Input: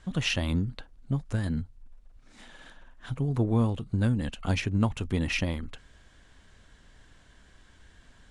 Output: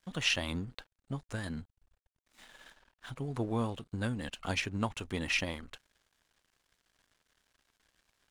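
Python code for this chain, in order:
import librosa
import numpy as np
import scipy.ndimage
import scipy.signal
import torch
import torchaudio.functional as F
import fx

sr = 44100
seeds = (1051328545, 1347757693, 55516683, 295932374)

y = fx.low_shelf(x, sr, hz=330.0, db=-12.0)
y = np.sign(y) * np.maximum(np.abs(y) - 10.0 ** (-58.0 / 20.0), 0.0)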